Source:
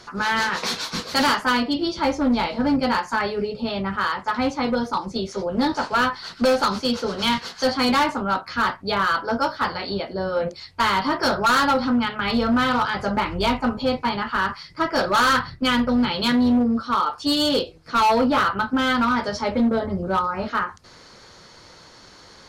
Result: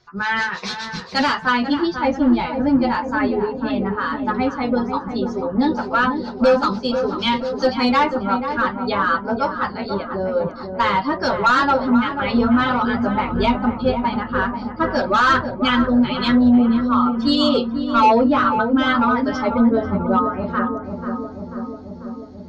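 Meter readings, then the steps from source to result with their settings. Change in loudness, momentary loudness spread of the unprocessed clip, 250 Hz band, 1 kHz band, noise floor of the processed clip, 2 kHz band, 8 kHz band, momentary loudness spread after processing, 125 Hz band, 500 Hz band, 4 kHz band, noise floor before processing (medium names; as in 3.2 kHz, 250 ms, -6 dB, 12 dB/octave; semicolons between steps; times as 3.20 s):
+3.0 dB, 7 LU, +5.0 dB, +2.5 dB, -34 dBFS, +1.5 dB, no reading, 9 LU, +4.0 dB, +3.5 dB, -1.5 dB, -47 dBFS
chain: expander on every frequency bin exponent 1.5; distance through air 140 m; filtered feedback delay 490 ms, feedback 76%, low-pass 1.1 kHz, level -6.5 dB; trim +6 dB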